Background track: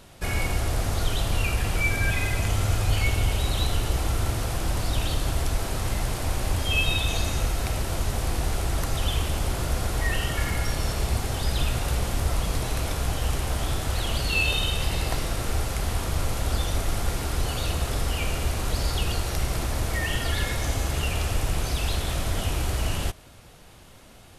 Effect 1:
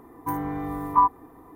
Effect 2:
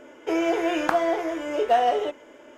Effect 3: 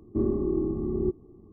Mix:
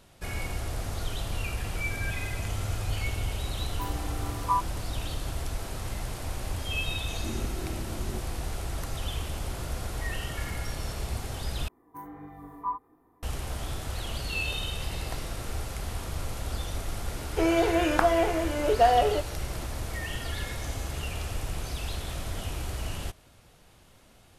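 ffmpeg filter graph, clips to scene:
-filter_complex "[1:a]asplit=2[s0][s1];[0:a]volume=0.422[s2];[s0]equalizer=f=110:t=o:w=2.3:g=-12[s3];[3:a]equalizer=f=480:t=o:w=1:g=-11.5[s4];[s1]flanger=delay=19:depth=6.2:speed=1.5[s5];[s2]asplit=2[s6][s7];[s6]atrim=end=11.684[s8];[s5]atrim=end=1.55,asetpts=PTS-STARTPTS,volume=0.266[s9];[s7]atrim=start=13.226[s10];[s3]atrim=end=1.55,asetpts=PTS-STARTPTS,volume=0.447,afade=t=in:d=0.004:c=hsin,afade=t=out:st=1.546:d=0.004:c=hsin,adelay=155673S[s11];[s4]atrim=end=1.52,asetpts=PTS-STARTPTS,volume=0.398,afade=t=in:d=0.004:c=hsin,afade=t=out:st=1.516:d=0.004:c=hsin,adelay=7090[s12];[2:a]atrim=end=2.57,asetpts=PTS-STARTPTS,volume=0.944,afade=t=in:d=0.004:c=hsin,afade=t=out:st=2.566:d=0.004:c=hsin,adelay=17100[s13];[s8][s9]acrossfade=d=0.004:c1=hsin:c2=hsin[s14];[s14][s10]acrossfade=d=0.004:c1=hsin:c2=hsin[s15];[s15][s11][s12][s13]amix=inputs=4:normalize=0"

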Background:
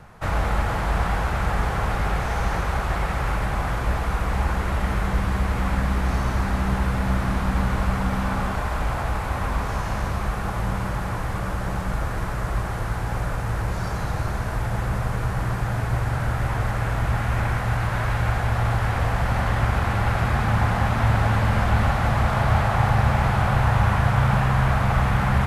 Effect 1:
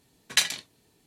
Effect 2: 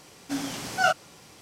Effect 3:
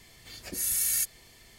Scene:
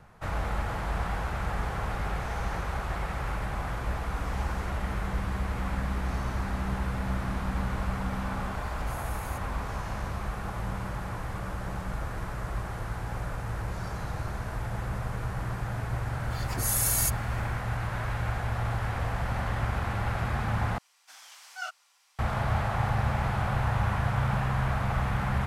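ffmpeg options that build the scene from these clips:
-filter_complex "[2:a]asplit=2[s0][s1];[3:a]asplit=2[s2][s3];[0:a]volume=0.398[s4];[s0]acompressor=threshold=0.0355:ratio=6:attack=3.2:release=140:knee=1:detection=peak[s5];[s2]acrossover=split=3200[s6][s7];[s7]acompressor=threshold=0.0224:ratio=4:attack=1:release=60[s8];[s6][s8]amix=inputs=2:normalize=0[s9];[s3]dynaudnorm=f=100:g=5:m=3.76[s10];[s1]highpass=f=890:w=0.5412,highpass=f=890:w=1.3066[s11];[s4]asplit=2[s12][s13];[s12]atrim=end=20.784[s14];[s11]atrim=end=1.41,asetpts=PTS-STARTPTS,volume=0.237[s15];[s13]atrim=start=22.186[s16];[s5]atrim=end=1.41,asetpts=PTS-STARTPTS,volume=0.15,afade=t=in:d=0.004:c=hsin,afade=t=out:st=1.406:d=0.004:c=hsin,adelay=3860[s17];[s9]atrim=end=1.58,asetpts=PTS-STARTPTS,volume=0.211,afade=t=in:d=0.004:c=hsin,afade=t=out:st=1.576:d=0.004:c=hsin,adelay=8330[s18];[s10]atrim=end=1.58,asetpts=PTS-STARTPTS,volume=0.299,afade=t=in:d=0.004:c=hsin,afade=t=out:st=1.576:d=0.004:c=hsin,adelay=16050[s19];[s14][s15]acrossfade=d=0.004:c1=hsin:c2=hsin[s20];[s20][s16]acrossfade=d=0.004:c1=hsin:c2=hsin[s21];[s21][s17][s18][s19]amix=inputs=4:normalize=0"

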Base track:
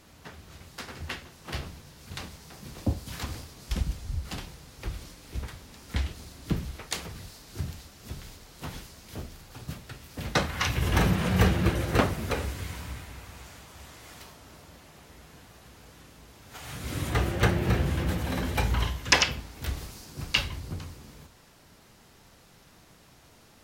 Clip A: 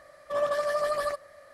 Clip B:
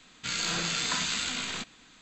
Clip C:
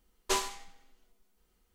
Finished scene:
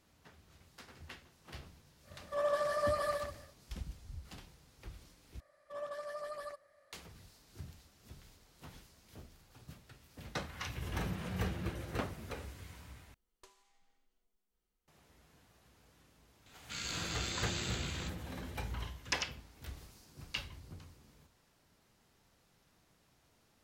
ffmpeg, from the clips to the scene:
-filter_complex "[1:a]asplit=2[s0][s1];[0:a]volume=0.188[s2];[s0]aecho=1:1:127:0.562[s3];[3:a]acompressor=threshold=0.00398:ratio=20:attack=29:release=377:knee=1:detection=peak[s4];[2:a]acompressor=mode=upward:threshold=0.00501:ratio=2.5:attack=3.2:release=140:knee=2.83:detection=peak[s5];[s2]asplit=3[s6][s7][s8];[s6]atrim=end=5.404[s9];[s1]atrim=end=1.53,asetpts=PTS-STARTPTS,volume=0.168[s10];[s7]atrim=start=6.926:end=13.144[s11];[s4]atrim=end=1.74,asetpts=PTS-STARTPTS,volume=0.188[s12];[s8]atrim=start=14.876[s13];[s3]atrim=end=1.53,asetpts=PTS-STARTPTS,volume=0.473,afade=t=in:d=0.1,afade=t=out:st=1.43:d=0.1,adelay=2020[s14];[s5]atrim=end=2.01,asetpts=PTS-STARTPTS,volume=0.316,afade=t=in:d=0.004:c=hsin,afade=t=out:st=2.006:d=0.004:c=hsin,adelay=16460[s15];[s9][s10]acrossfade=d=0.004:c1=hsin:c2=hsin[s16];[s16][s11]acrossfade=d=0.004:c1=hsin:c2=hsin[s17];[s17][s12]acrossfade=d=0.004:c1=hsin:c2=hsin[s18];[s18][s13]acrossfade=d=0.004:c1=hsin:c2=hsin[s19];[s19][s14][s15]amix=inputs=3:normalize=0"

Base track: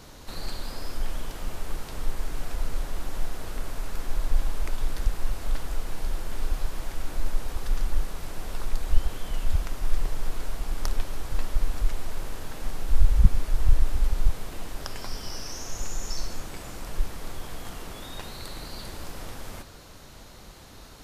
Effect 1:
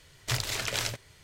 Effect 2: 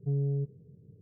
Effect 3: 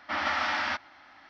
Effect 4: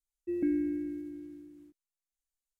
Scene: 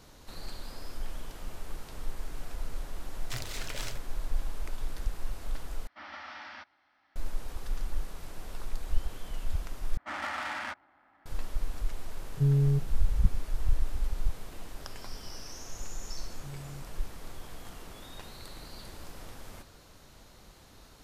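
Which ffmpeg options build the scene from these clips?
-filter_complex "[3:a]asplit=2[s0][s1];[2:a]asplit=2[s2][s3];[0:a]volume=0.422[s4];[1:a]aeval=exprs='clip(val(0),-1,0.0376)':c=same[s5];[s1]adynamicsmooth=sensitivity=5:basefreq=1400[s6];[s2]tiltshelf=f=670:g=10[s7];[s3]lowshelf=f=640:t=q:w=3:g=-12.5[s8];[s4]asplit=3[s9][s10][s11];[s9]atrim=end=5.874[s12];[s0]atrim=end=1.29,asetpts=PTS-STARTPTS,volume=0.158[s13];[s10]atrim=start=7.156:end=9.974[s14];[s6]atrim=end=1.29,asetpts=PTS-STARTPTS,volume=0.473[s15];[s11]atrim=start=11.256[s16];[s5]atrim=end=1.23,asetpts=PTS-STARTPTS,volume=0.398,afade=t=in:d=0.004:c=hsin,afade=t=out:st=1.226:d=0.004:c=hsin,adelay=3020[s17];[s7]atrim=end=1.01,asetpts=PTS-STARTPTS,volume=0.668,afade=t=in:d=0.004:c=hsin,afade=t=out:st=1.006:d=0.004:c=hsin,adelay=12340[s18];[s8]atrim=end=1.01,asetpts=PTS-STARTPTS,volume=0.841,afade=t=in:d=0.004:c=hsin,afade=t=out:st=1.006:d=0.004:c=hsin,adelay=16370[s19];[s12][s13]acrossfade=d=0.004:c1=hsin:c2=hsin[s20];[s20][s14]acrossfade=d=0.004:c1=hsin:c2=hsin[s21];[s21][s15]acrossfade=d=0.004:c1=hsin:c2=hsin[s22];[s22][s16]acrossfade=d=0.004:c1=hsin:c2=hsin[s23];[s23][s17][s18][s19]amix=inputs=4:normalize=0"

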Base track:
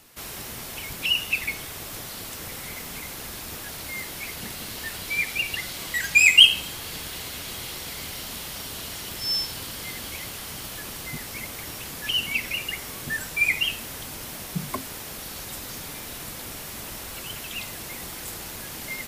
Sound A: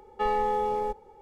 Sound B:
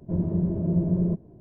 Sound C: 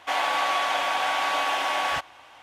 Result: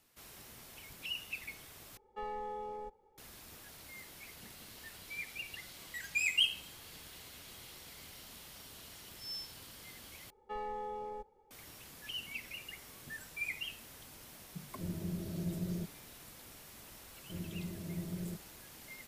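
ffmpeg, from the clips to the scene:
-filter_complex "[1:a]asplit=2[s0][s1];[2:a]asplit=2[s2][s3];[0:a]volume=0.141,asplit=3[s4][s5][s6];[s4]atrim=end=1.974[s7];[s0]atrim=end=1.21,asetpts=PTS-STARTPTS,volume=0.178[s8];[s5]atrim=start=3.176:end=10.304[s9];[s1]atrim=end=1.21,asetpts=PTS-STARTPTS,volume=0.188[s10];[s6]atrim=start=11.506[s11];[s2]atrim=end=1.4,asetpts=PTS-STARTPTS,volume=0.188,afade=t=in:d=0.004:c=hsin,afade=t=out:st=1.396:d=0.004:c=hsin,adelay=14700[s12];[s3]atrim=end=1.4,asetpts=PTS-STARTPTS,volume=0.133,afade=t=in:d=0.004:c=hsin,afade=t=out:st=1.396:d=0.004:c=hsin,adelay=17210[s13];[s7][s8]acrossfade=d=0.004:c1=hsin:c2=hsin[s14];[s14][s9]acrossfade=d=0.004:c1=hsin:c2=hsin[s15];[s15][s10]acrossfade=d=0.004:c1=hsin:c2=hsin[s16];[s16][s11]acrossfade=d=0.004:c1=hsin:c2=hsin[s17];[s17][s12][s13]amix=inputs=3:normalize=0"

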